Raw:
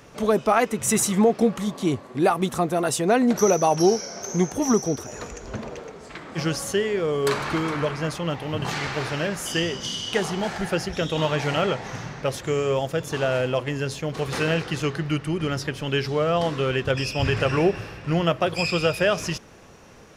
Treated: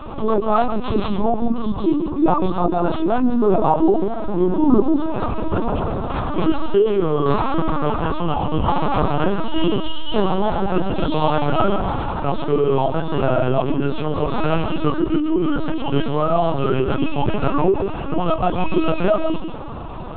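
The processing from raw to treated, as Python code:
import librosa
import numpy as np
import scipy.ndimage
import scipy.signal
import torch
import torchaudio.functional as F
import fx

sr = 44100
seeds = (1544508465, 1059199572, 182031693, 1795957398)

y = fx.tracing_dist(x, sr, depth_ms=0.34)
y = fx.lowpass(y, sr, hz=1600.0, slope=6)
y = fx.hum_notches(y, sr, base_hz=60, count=6)
y = fx.rider(y, sr, range_db=10, speed_s=2.0)
y = fx.fixed_phaser(y, sr, hz=520.0, stages=6)
y = fx.chorus_voices(y, sr, voices=6, hz=0.93, base_ms=25, depth_ms=4.5, mix_pct=55)
y = fx.wow_flutter(y, sr, seeds[0], rate_hz=2.1, depth_cents=19.0)
y = y + 10.0 ** (-13.0 / 20.0) * np.pad(y, (int(143 * sr / 1000.0), 0))[:len(y)]
y = fx.lpc_vocoder(y, sr, seeds[1], excitation='pitch_kept', order=10)
y = fx.env_flatten(y, sr, amount_pct=50)
y = y * librosa.db_to_amplitude(6.5)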